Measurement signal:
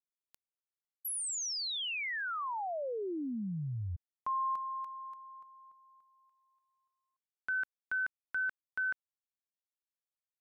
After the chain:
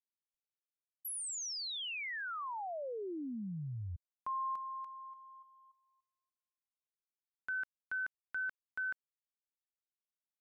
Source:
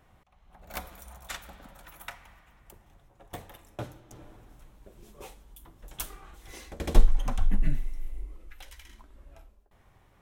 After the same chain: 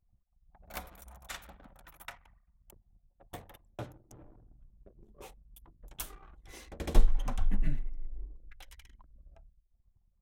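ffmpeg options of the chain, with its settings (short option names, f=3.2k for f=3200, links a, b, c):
-af "anlmdn=0.00398,volume=-4dB"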